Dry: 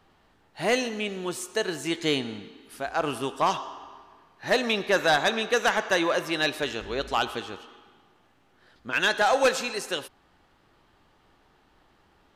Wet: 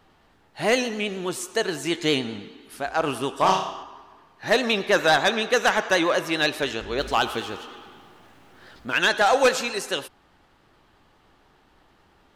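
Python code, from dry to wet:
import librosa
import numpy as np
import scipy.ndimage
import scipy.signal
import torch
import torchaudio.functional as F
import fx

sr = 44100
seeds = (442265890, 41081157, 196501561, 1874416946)

y = fx.law_mismatch(x, sr, coded='mu', at=(6.98, 8.93))
y = fx.vibrato(y, sr, rate_hz=9.6, depth_cents=55.0)
y = fx.room_flutter(y, sr, wall_m=5.4, rt60_s=0.46, at=(3.35, 3.83))
y = F.gain(torch.from_numpy(y), 3.0).numpy()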